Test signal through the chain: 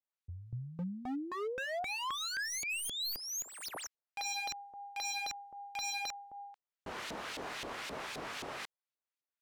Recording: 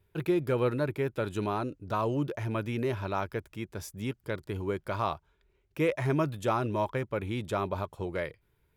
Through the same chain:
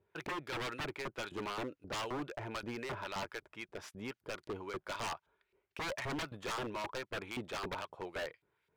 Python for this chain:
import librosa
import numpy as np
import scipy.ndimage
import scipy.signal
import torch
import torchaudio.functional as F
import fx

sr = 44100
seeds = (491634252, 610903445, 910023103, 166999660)

y = fx.tracing_dist(x, sr, depth_ms=0.051)
y = fx.filter_lfo_bandpass(y, sr, shape='saw_up', hz=3.8, low_hz=430.0, high_hz=3600.0, q=0.81)
y = 10.0 ** (-34.5 / 20.0) * (np.abs((y / 10.0 ** (-34.5 / 20.0) + 3.0) % 4.0 - 2.0) - 1.0)
y = y * 10.0 ** (1.5 / 20.0)